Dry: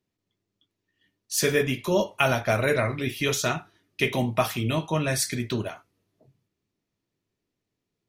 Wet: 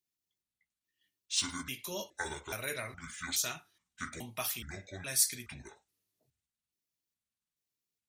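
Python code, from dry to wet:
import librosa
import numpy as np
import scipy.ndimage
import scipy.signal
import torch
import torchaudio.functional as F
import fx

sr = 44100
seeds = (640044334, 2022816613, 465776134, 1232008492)

y = fx.pitch_trill(x, sr, semitones=-8.5, every_ms=420)
y = scipy.signal.lfilter([1.0, -0.9], [1.0], y)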